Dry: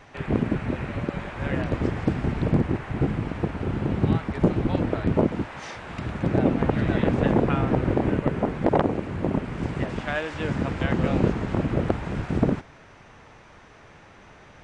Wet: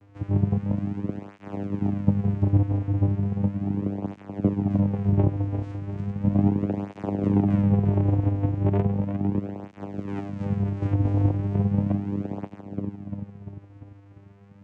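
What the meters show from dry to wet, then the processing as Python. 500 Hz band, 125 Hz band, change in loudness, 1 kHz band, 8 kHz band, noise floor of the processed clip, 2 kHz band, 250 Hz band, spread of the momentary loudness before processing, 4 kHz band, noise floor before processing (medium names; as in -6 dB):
-6.5 dB, +3.0 dB, 0.0 dB, -7.5 dB, no reading, -51 dBFS, under -15 dB, 0.0 dB, 7 LU, under -15 dB, -50 dBFS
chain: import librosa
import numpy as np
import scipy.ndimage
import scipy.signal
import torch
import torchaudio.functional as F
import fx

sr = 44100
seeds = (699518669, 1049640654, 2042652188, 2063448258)

y = fx.echo_feedback(x, sr, ms=347, feedback_pct=53, wet_db=-8)
y = fx.vocoder(y, sr, bands=4, carrier='saw', carrier_hz=99.9)
y = fx.peak_eq(y, sr, hz=170.0, db=8.0, octaves=2.8)
y = fx.flanger_cancel(y, sr, hz=0.36, depth_ms=5.5)
y = F.gain(torch.from_numpy(y), -3.0).numpy()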